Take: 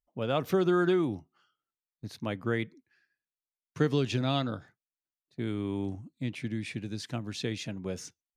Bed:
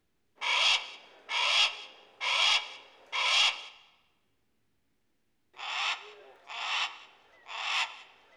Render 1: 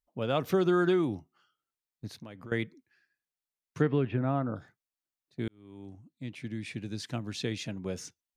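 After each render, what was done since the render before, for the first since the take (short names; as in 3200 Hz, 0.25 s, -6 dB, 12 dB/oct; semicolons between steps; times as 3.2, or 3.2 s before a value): 2.11–2.52 compressor 5:1, threshold -42 dBFS; 3.8–4.55 LPF 2900 Hz -> 1300 Hz 24 dB/oct; 5.48–7.01 fade in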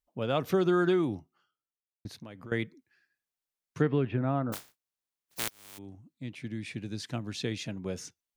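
1.1–2.05 studio fade out; 4.52–5.77 spectral contrast lowered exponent 0.12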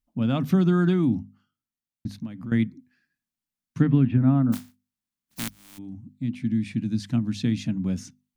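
resonant low shelf 320 Hz +9 dB, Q 3; notches 50/100/150/200/250 Hz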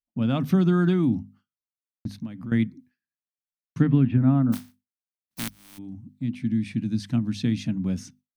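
gate with hold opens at -48 dBFS; notch 7100 Hz, Q 11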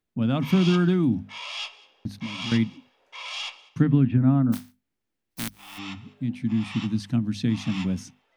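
add bed -8.5 dB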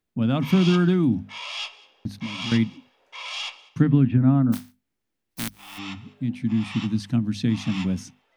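gain +1.5 dB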